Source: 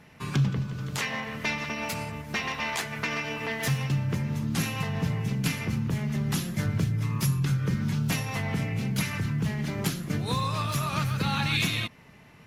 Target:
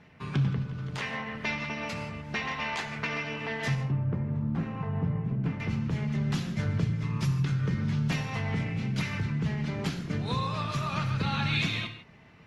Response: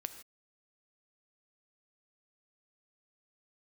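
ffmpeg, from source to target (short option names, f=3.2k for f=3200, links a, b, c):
-filter_complex "[0:a]asetnsamples=n=441:p=0,asendcmd='3.75 lowpass f 1100;5.6 lowpass f 4800',lowpass=4.6k[a];[1:a]atrim=start_sample=2205[b];[a][b]afir=irnorm=-1:irlink=0" -ar 48000 -c:a libopus -b:a 48k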